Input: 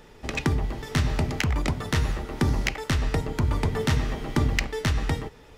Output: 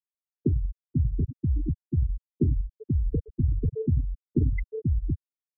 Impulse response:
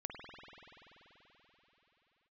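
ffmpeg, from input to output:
-filter_complex "[0:a]equalizer=f=340:w=1.1:g=7,afftfilt=real='re*gte(hypot(re,im),0.447)':imag='im*gte(hypot(re,im),0.447)':win_size=1024:overlap=0.75,acrossover=split=180|3700[a][b][c];[a]acontrast=71[d];[d][b][c]amix=inputs=3:normalize=0,volume=-6dB"

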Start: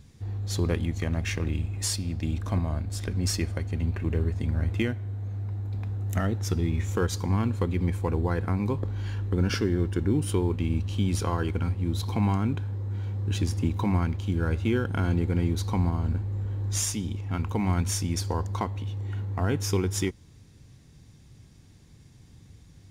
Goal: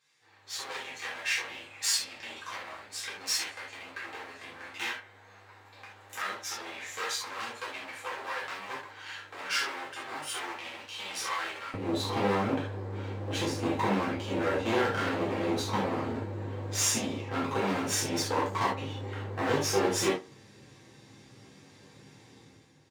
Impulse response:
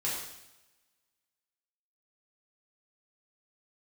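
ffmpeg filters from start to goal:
-filter_complex "[0:a]lowpass=f=2.9k:p=1,asoftclip=type=hard:threshold=-29dB[a];[1:a]atrim=start_sample=2205,atrim=end_sample=3969[b];[a][b]afir=irnorm=-1:irlink=0,dynaudnorm=f=100:g=11:m=10dB,asplit=2[c][d];[d]adelay=60,lowpass=f=2.1k:p=1,volume=-17dB,asplit=2[e][f];[f]adelay=60,lowpass=f=2.1k:p=1,volume=0.38,asplit=2[g][h];[h]adelay=60,lowpass=f=2.1k:p=1,volume=0.38[i];[c][e][g][i]amix=inputs=4:normalize=0,flanger=delay=6.6:depth=5:regen=-47:speed=0.11:shape=triangular,asetnsamples=n=441:p=0,asendcmd='11.74 highpass f 320',highpass=1.3k"

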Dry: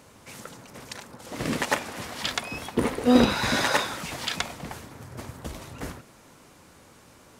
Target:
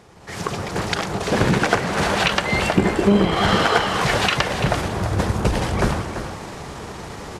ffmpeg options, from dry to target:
-filter_complex "[0:a]asetrate=36028,aresample=44100,atempo=1.22405,equalizer=f=250:w=5.6:g=-7,acompressor=threshold=-35dB:ratio=6,highshelf=f=4k:g=-8.5,asplit=2[a][b];[b]asplit=6[c][d][e][f][g][h];[c]adelay=118,afreqshift=130,volume=-16dB[i];[d]adelay=236,afreqshift=260,volume=-20.3dB[j];[e]adelay=354,afreqshift=390,volume=-24.6dB[k];[f]adelay=472,afreqshift=520,volume=-28.9dB[l];[g]adelay=590,afreqshift=650,volume=-33.2dB[m];[h]adelay=708,afreqshift=780,volume=-37.5dB[n];[i][j][k][l][m][n]amix=inputs=6:normalize=0[o];[a][o]amix=inputs=2:normalize=0,dynaudnorm=f=110:g=7:m=15.5dB,asplit=2[p][q];[q]aecho=0:1:339:0.316[r];[p][r]amix=inputs=2:normalize=0,volume=5dB"

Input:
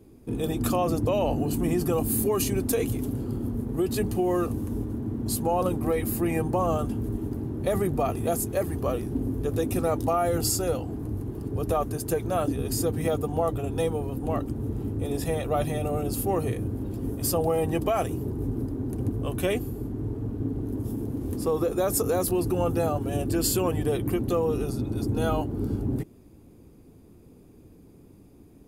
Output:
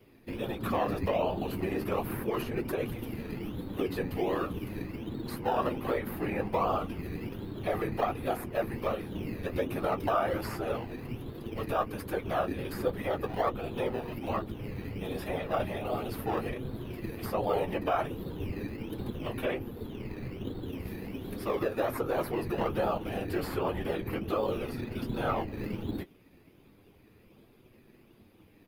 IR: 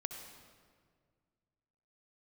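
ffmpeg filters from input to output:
-filter_complex "[0:a]afftfilt=real='hypot(re,im)*cos(2*PI*random(0))':imag='hypot(re,im)*sin(2*PI*random(1))':win_size=512:overlap=0.75,asplit=2[a][b];[b]acrusher=samples=16:mix=1:aa=0.000001:lfo=1:lforange=9.6:lforate=1.3,volume=-11dB[c];[a][c]amix=inputs=2:normalize=0,tiltshelf=f=1.1k:g=-10,flanger=delay=7.9:depth=3.3:regen=-40:speed=0.36:shape=triangular,firequalizer=gain_entry='entry(2400,0);entry(7300,-23);entry(13000,-11)':delay=0.05:min_phase=1,acrossover=split=370|1600[d][e][f];[f]acompressor=threshold=-56dB:ratio=5[g];[d][e][g]amix=inputs=3:normalize=0,volume=9dB"

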